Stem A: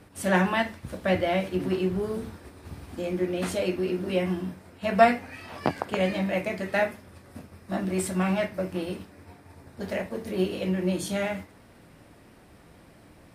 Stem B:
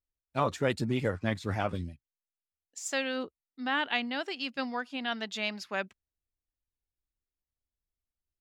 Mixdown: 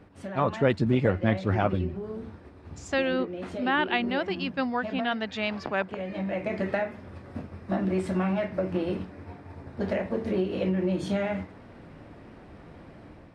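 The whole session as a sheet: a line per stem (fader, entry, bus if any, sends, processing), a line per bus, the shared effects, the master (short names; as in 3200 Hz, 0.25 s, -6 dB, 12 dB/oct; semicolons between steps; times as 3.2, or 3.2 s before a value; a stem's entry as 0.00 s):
+1.5 dB, 0.00 s, no send, notches 60/120/180 Hz; compressor 12:1, threshold -29 dBFS, peak gain reduction 18 dB; auto duck -8 dB, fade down 0.40 s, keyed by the second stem
+2.0 dB, 0.00 s, no send, dry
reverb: off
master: AGC gain up to 5.5 dB; tape spacing loss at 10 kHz 23 dB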